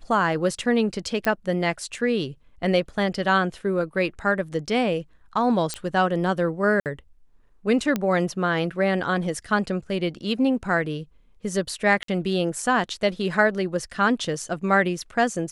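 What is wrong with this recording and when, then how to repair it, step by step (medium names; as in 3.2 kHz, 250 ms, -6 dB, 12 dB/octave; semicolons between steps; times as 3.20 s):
1.25 s: pop -11 dBFS
5.74 s: pop -13 dBFS
6.80–6.86 s: dropout 58 ms
7.96 s: pop -11 dBFS
12.03–12.08 s: dropout 53 ms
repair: de-click; interpolate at 6.80 s, 58 ms; interpolate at 12.03 s, 53 ms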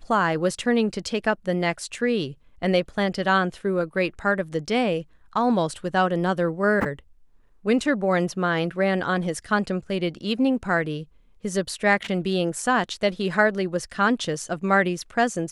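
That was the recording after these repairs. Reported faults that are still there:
nothing left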